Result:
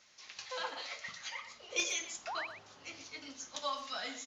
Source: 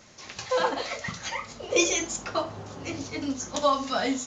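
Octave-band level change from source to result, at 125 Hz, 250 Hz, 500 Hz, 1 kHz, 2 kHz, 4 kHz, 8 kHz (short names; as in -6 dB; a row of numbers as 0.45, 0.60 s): -25.5, -22.5, -18.0, -13.0, -8.5, -7.5, -10.5 dB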